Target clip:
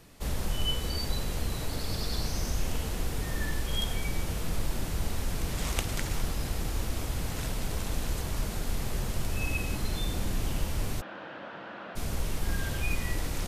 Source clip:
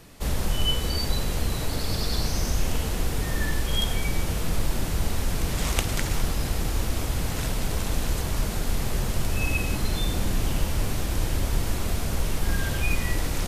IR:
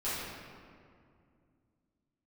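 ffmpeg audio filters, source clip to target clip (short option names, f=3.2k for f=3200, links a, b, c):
-filter_complex "[0:a]asplit=3[a][b][c];[a]afade=t=out:st=11:d=0.02[d];[b]highpass=f=230:w=0.5412,highpass=f=230:w=1.3066,equalizer=f=260:t=q:w=4:g=-8,equalizer=f=400:t=q:w=4:g=-10,equalizer=f=580:t=q:w=4:g=3,equalizer=f=1.5k:t=q:w=4:g=7,equalizer=f=2.2k:t=q:w=4:g=-7,lowpass=f=2.8k:w=0.5412,lowpass=f=2.8k:w=1.3066,afade=t=in:st=11:d=0.02,afade=t=out:st=11.95:d=0.02[e];[c]afade=t=in:st=11.95:d=0.02[f];[d][e][f]amix=inputs=3:normalize=0,volume=-5.5dB"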